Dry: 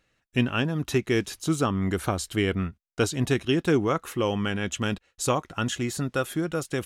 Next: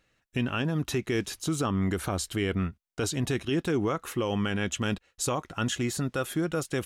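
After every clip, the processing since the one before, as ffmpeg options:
-af "alimiter=limit=-19dB:level=0:latency=1:release=49"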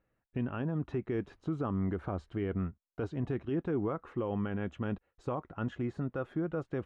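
-af "lowpass=1.2k,volume=-5dB"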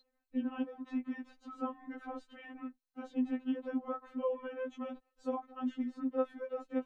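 -af "aeval=exprs='val(0)+0.00158*sin(2*PI*4100*n/s)':c=same,afftfilt=real='re*3.46*eq(mod(b,12),0)':imag='im*3.46*eq(mod(b,12),0)':win_size=2048:overlap=0.75"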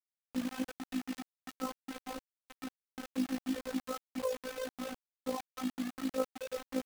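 -af "acrusher=bits=6:mix=0:aa=0.000001,tremolo=f=55:d=0.571,volume=1.5dB"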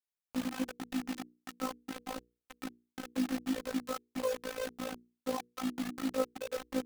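-filter_complex "[0:a]asplit=2[a][b];[b]acrusher=bits=5:mix=0:aa=0.000001,volume=-6.5dB[c];[a][c]amix=inputs=2:normalize=0,bandreject=f=60:t=h:w=6,bandreject=f=120:t=h:w=6,bandreject=f=180:t=h:w=6,bandreject=f=240:t=h:w=6,bandreject=f=300:t=h:w=6,bandreject=f=360:t=h:w=6,bandreject=f=420:t=h:w=6,bandreject=f=480:t=h:w=6,volume=-2dB"

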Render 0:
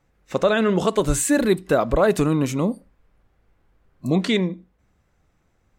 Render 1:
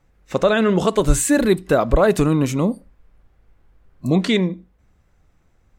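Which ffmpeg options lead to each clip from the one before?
-af "lowshelf=f=70:g=8,volume=2dB"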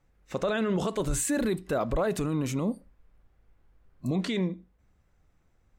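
-af "alimiter=limit=-12dB:level=0:latency=1:release=18,volume=-7.5dB"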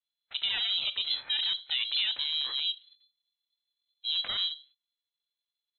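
-af "agate=range=-23dB:threshold=-53dB:ratio=16:detection=peak,lowpass=f=3.2k:t=q:w=0.5098,lowpass=f=3.2k:t=q:w=0.6013,lowpass=f=3.2k:t=q:w=0.9,lowpass=f=3.2k:t=q:w=2.563,afreqshift=-3800,aeval=exprs='val(0)*sin(2*PI*330*n/s)':c=same"

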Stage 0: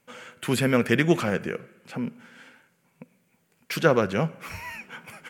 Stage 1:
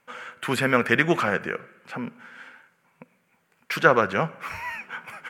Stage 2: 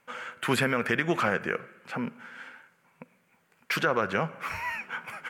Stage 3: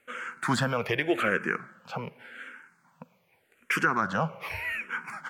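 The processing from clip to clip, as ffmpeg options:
-af "equalizer=f=1.3k:w=0.57:g=12,volume=-4.5dB"
-af "alimiter=limit=-12.5dB:level=0:latency=1:release=178"
-filter_complex "[0:a]asplit=2[a][b];[b]afreqshift=-0.85[c];[a][c]amix=inputs=2:normalize=1,volume=3dB"

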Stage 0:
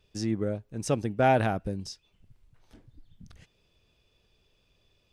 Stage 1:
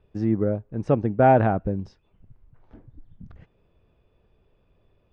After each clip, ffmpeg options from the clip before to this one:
-af "lowpass=1.3k,volume=6.5dB"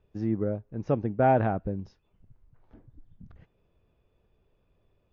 -af "volume=-5dB" -ar 16000 -c:a libmp3lame -b:a 40k

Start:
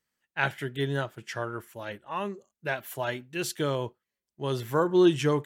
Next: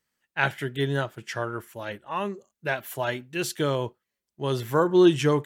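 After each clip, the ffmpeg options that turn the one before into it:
-af "deesser=0.55,volume=3dB"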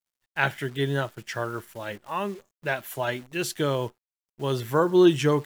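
-af "acrusher=bits=9:dc=4:mix=0:aa=0.000001"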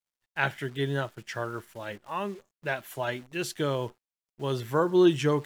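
-af "highshelf=f=11k:g=-6.5,areverse,acompressor=mode=upward:threshold=-42dB:ratio=2.5,areverse,volume=-3dB"

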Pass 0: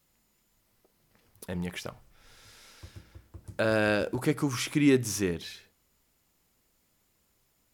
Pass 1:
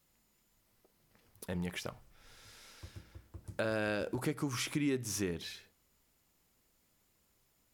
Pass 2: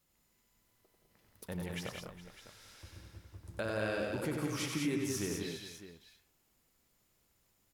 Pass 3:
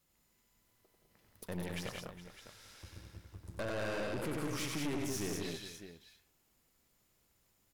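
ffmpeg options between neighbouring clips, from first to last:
-af "acompressor=threshold=-30dB:ratio=3,volume=-2.5dB"
-af "aecho=1:1:93|173|203|413|605:0.562|0.422|0.531|0.158|0.2,volume=-3dB"
-af "aeval=exprs='(tanh(79.4*val(0)+0.7)-tanh(0.7))/79.4':c=same,volume=4dB"

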